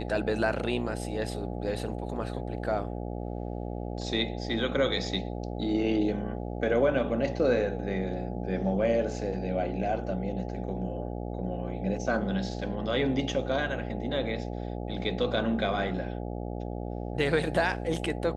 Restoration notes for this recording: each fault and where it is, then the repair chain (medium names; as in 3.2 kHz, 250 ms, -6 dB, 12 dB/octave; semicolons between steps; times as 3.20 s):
buzz 60 Hz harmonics 14 -35 dBFS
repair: de-hum 60 Hz, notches 14